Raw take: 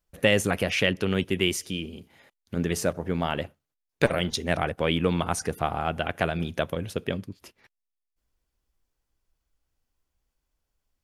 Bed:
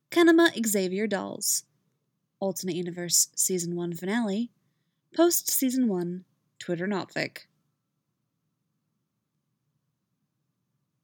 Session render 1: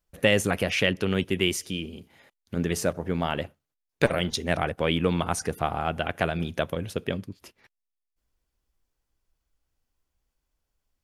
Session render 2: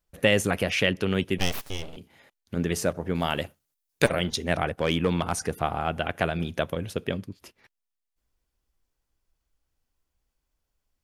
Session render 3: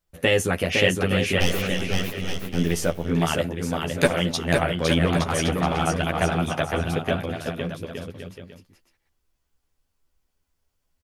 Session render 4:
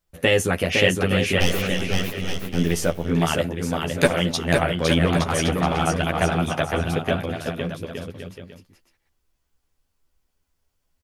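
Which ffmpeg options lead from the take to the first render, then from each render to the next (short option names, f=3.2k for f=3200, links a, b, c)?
-af anull
-filter_complex "[0:a]asettb=1/sr,asplit=3[a][b][c];[a]atrim=end=1.384[d];[b]atrim=start=1.38:end=1.97,asetpts=PTS-STARTPTS,afade=t=in:d=0.004:c=qsin,afade=t=out:st=0.586:d=0.004:c=qsin,aeval=exprs='abs(val(0))':c=same[e];[c]atrim=start=1.966[f];[d][e]acrossfade=d=0.004:c1=hsin:c2=qsin[g];[g][f]acrossfade=d=0.004:c1=qsin:c2=hsin,asettb=1/sr,asplit=3[h][i][j];[h]atrim=end=3.154[k];[i]atrim=start=3.15:end=4.09,asetpts=PTS-STARTPTS,afade=t=in:d=0.004:c=qsin,afade=t=out:st=0.936:d=0.004:c=qsin,highshelf=f=4.5k:g=12[l];[j]atrim=start=4.086[m];[k][l]acrossfade=d=0.004:c1=hsin:c2=qsin[n];[n][m]acrossfade=d=0.004:c1=qsin:c2=hsin,asettb=1/sr,asplit=3[o][p][q];[o]atrim=end=4.694[r];[p]atrim=start=4.69:end=5.32,asetpts=PTS-STARTPTS,afade=t=in:d=0.004:c=qsin,afade=t=out:st=0.626:d=0.004:c=qsin,asoftclip=type=hard:threshold=-14.5dB[s];[q]atrim=start=5.316[t];[r][s]acrossfade=d=0.004:c1=hsin:c2=qsin[u];[u][t]acrossfade=d=0.004:c1=qsin:c2=hsin"
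-filter_complex "[0:a]asplit=2[a][b];[b]adelay=12,volume=-3dB[c];[a][c]amix=inputs=2:normalize=0,aecho=1:1:510|867|1117|1292|1414:0.631|0.398|0.251|0.158|0.1"
-af "volume=1.5dB"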